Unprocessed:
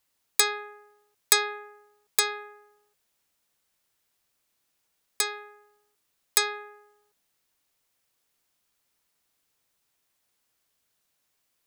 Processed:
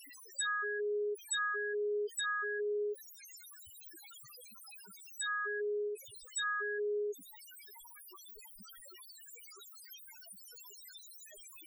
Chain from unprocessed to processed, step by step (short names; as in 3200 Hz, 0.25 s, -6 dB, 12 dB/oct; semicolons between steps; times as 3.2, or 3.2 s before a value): zero-crossing step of -17 dBFS; loudest bins only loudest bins 2; gain -7 dB